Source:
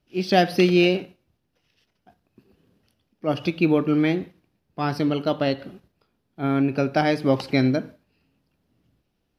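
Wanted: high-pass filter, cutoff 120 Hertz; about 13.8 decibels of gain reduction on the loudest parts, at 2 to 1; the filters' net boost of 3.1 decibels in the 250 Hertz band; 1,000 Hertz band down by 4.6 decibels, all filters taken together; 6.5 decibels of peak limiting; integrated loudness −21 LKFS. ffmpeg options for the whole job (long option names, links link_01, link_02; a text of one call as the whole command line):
ffmpeg -i in.wav -af "highpass=120,equalizer=frequency=250:width_type=o:gain=5,equalizer=frequency=1000:width_type=o:gain=-8.5,acompressor=threshold=-39dB:ratio=2,volume=14.5dB,alimiter=limit=-10dB:level=0:latency=1" out.wav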